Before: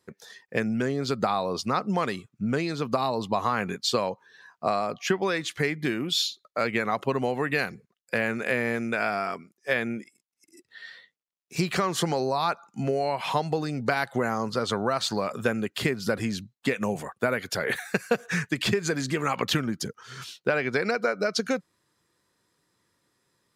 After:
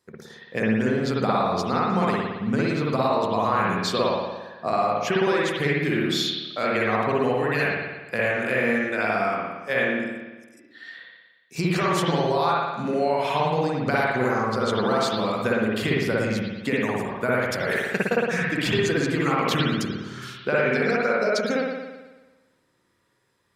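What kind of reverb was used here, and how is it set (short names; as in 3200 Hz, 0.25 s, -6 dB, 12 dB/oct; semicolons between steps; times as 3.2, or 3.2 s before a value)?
spring tank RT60 1.2 s, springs 55 ms, chirp 65 ms, DRR -5 dB; gain -2 dB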